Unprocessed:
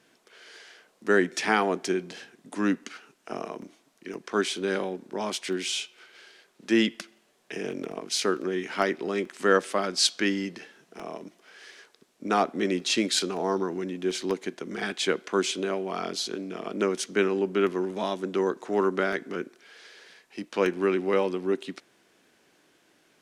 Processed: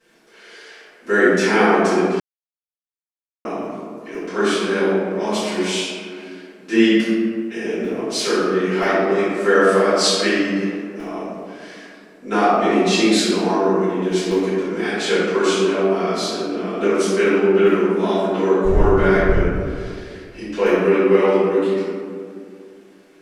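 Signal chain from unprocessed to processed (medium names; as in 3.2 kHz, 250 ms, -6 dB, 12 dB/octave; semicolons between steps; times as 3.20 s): 18.64–19.46 s: wind noise 100 Hz -23 dBFS; reverberation RT60 2.3 s, pre-delay 3 ms, DRR -17.5 dB; 2.20–3.45 s: mute; trim -8.5 dB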